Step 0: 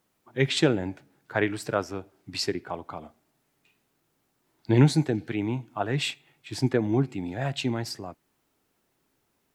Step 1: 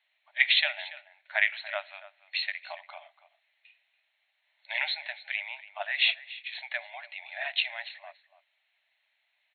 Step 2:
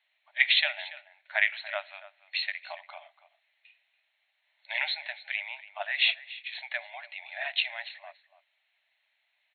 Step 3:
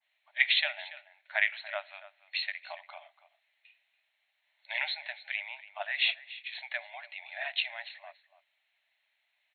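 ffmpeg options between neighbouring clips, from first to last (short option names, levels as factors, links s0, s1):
-filter_complex "[0:a]highshelf=f=1600:t=q:w=3:g=8,afftfilt=real='re*between(b*sr/4096,580,4300)':imag='im*between(b*sr/4096,580,4300)':win_size=4096:overlap=0.75,asplit=2[s0][s1];[s1]adelay=285.7,volume=0.158,highshelf=f=4000:g=-6.43[s2];[s0][s2]amix=inputs=2:normalize=0,volume=0.596"
-af anull
-af "adynamicequalizer=threshold=0.0141:dfrequency=1700:dqfactor=0.7:tfrequency=1700:tqfactor=0.7:attack=5:release=100:ratio=0.375:range=2:mode=cutabove:tftype=highshelf,volume=0.794"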